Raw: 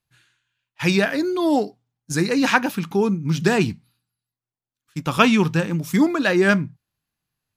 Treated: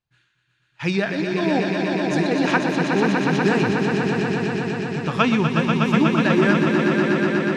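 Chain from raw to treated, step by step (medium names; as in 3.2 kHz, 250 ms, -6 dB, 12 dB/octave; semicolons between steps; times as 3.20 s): distance through air 95 m; on a send: echo with a slow build-up 122 ms, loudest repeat 5, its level -6 dB; on the sum: trim -3 dB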